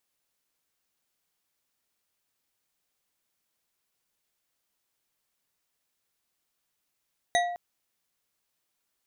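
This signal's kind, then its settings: glass hit bar, length 0.21 s, lowest mode 703 Hz, decay 0.90 s, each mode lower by 3 dB, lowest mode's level -20.5 dB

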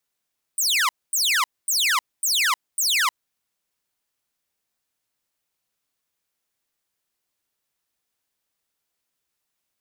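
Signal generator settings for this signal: burst of laser zaps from 9.2 kHz, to 950 Hz, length 0.31 s saw, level -15 dB, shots 5, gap 0.24 s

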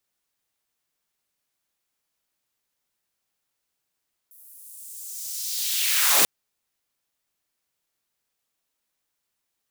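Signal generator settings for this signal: swept filtered noise white, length 1.94 s highpass, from 12 kHz, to 120 Hz, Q 1.6, linear, gain ramp +34.5 dB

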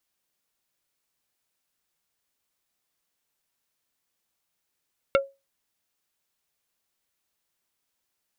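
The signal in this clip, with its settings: wood hit plate, lowest mode 549 Hz, decay 0.24 s, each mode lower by 3 dB, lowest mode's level -14 dB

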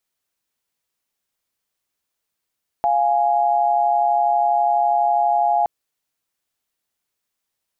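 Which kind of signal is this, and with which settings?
chord F5/G#5 sine, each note -17.5 dBFS 2.82 s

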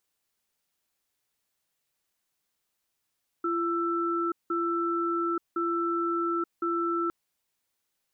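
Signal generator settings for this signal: cadence 340 Hz, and 1.33 kHz, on 0.88 s, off 0.18 s, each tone -28 dBFS 3.66 s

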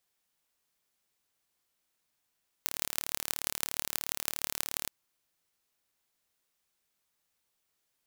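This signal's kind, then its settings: pulse train 37 per s, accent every 6, -1.5 dBFS 2.22 s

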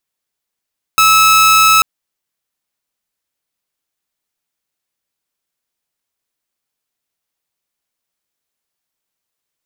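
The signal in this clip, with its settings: tone saw 1.3 kHz -4 dBFS 0.84 s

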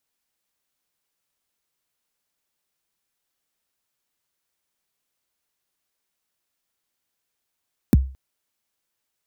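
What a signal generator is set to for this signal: kick drum length 0.22 s, from 330 Hz, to 66 Hz, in 24 ms, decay 0.37 s, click on, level -7 dB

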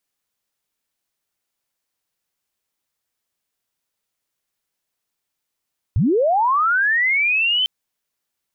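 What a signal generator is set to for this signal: sweep linear 75 Hz -> 3.1 kHz -13.5 dBFS -> -15.5 dBFS 1.70 s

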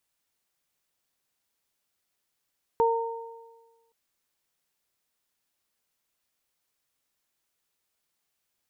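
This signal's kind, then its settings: additive tone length 1.12 s, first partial 459 Hz, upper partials -0.5 dB, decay 1.33 s, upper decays 1.25 s, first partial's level -20 dB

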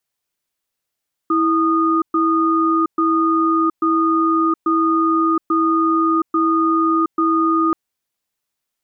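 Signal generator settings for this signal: cadence 326 Hz, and 1.23 kHz, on 0.72 s, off 0.12 s, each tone -16 dBFS 6.43 s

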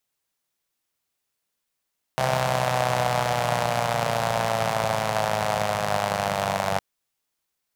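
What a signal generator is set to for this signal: four-cylinder engine model, changing speed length 4.61 s, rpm 3900, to 2900, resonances 150/660 Hz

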